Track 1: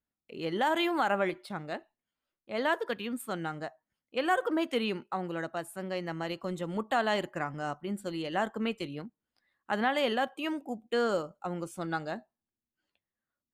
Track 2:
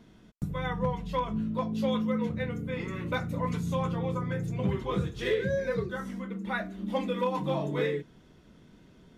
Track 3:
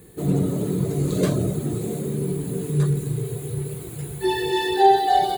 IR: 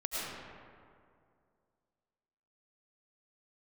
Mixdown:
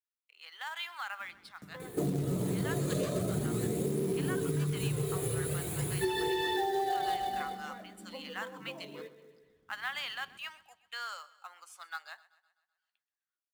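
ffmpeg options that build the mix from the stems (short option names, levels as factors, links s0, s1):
-filter_complex "[0:a]highpass=f=1100:w=0.5412,highpass=f=1100:w=1.3066,dynaudnorm=f=750:g=5:m=1.5,adynamicequalizer=threshold=0.00178:dfrequency=5200:dqfactor=1.9:tfrequency=5200:tqfactor=1.9:attack=5:release=100:ratio=0.375:range=2.5:mode=boostabove:tftype=bell,volume=0.447,asplit=3[s0][s1][s2];[s1]volume=0.1[s3];[1:a]equalizer=f=88:w=1.5:g=7,acrossover=split=180|550[s4][s5][s6];[s4]acompressor=threshold=0.00224:ratio=4[s7];[s5]acompressor=threshold=0.0141:ratio=4[s8];[s6]acompressor=threshold=0.00398:ratio=4[s9];[s7][s8][s9]amix=inputs=3:normalize=0,adelay=1200,volume=0.473,asplit=2[s10][s11];[s11]volume=0.188[s12];[2:a]aphaser=in_gain=1:out_gain=1:delay=1.7:decay=0.35:speed=0.43:type=sinusoidal,adelay=1800,volume=1.26,asplit=2[s13][s14];[s14]volume=0.266[s15];[s2]apad=whole_len=457570[s16];[s10][s16]sidechaingate=range=0.0224:threshold=0.001:ratio=16:detection=peak[s17];[s17][s13]amix=inputs=2:normalize=0,highpass=f=270:p=1,acompressor=threshold=0.1:ratio=6,volume=1[s18];[s3][s12][s15]amix=inputs=3:normalize=0,aecho=0:1:127|254|381|508|635|762|889|1016:1|0.53|0.281|0.149|0.0789|0.0418|0.0222|0.0117[s19];[s0][s18][s19]amix=inputs=3:normalize=0,highshelf=f=9900:g=-3.5,acrusher=bits=5:mode=log:mix=0:aa=0.000001,acompressor=threshold=0.0398:ratio=12"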